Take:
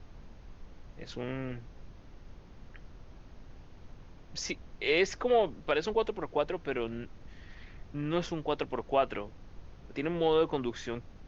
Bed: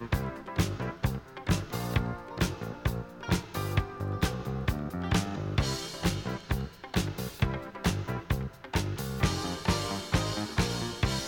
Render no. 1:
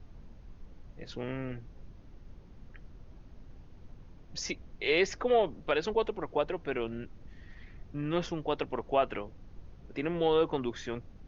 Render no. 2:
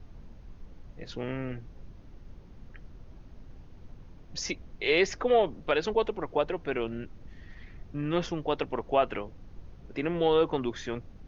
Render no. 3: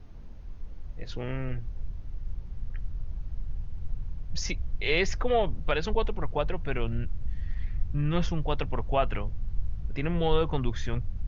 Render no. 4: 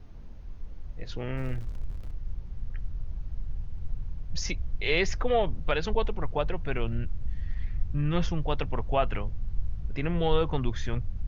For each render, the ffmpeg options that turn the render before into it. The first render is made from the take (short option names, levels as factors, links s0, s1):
-af "afftdn=nr=6:nf=-53"
-af "volume=1.33"
-af "asubboost=boost=8.5:cutoff=110"
-filter_complex "[0:a]asettb=1/sr,asplit=3[s0][s1][s2];[s0]atrim=end=1.374[s3];[s1]atrim=start=1.37:end=2.11,asetpts=PTS-STARTPTS,afade=t=in:d=0.004:c=qsin,afade=t=out:st=0.736:d=0.004:c=qsin,aeval=exprs='val(0)+0.5*0.00708*sgn(val(0))':c=same[s4];[s2]atrim=start=2.106[s5];[s3][s4]acrossfade=d=0.004:c1=hsin:c2=qsin[s6];[s6][s5]acrossfade=d=0.004:c1=qsin:c2=hsin"